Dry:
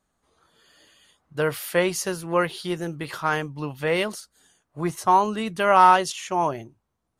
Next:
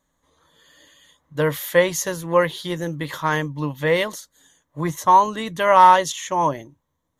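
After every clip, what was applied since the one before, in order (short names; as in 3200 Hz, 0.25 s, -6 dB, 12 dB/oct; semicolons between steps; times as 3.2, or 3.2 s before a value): ripple EQ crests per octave 1.1, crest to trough 9 dB; gain +2 dB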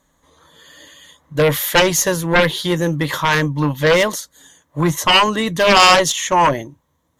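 added harmonics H 3 -11 dB, 6 -20 dB, 7 -7 dB, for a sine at -1 dBFS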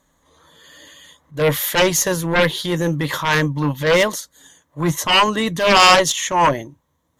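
transient shaper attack -8 dB, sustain -2 dB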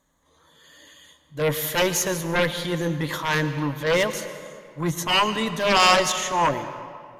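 reverb RT60 2.3 s, pre-delay 98 ms, DRR 10.5 dB; gain -6 dB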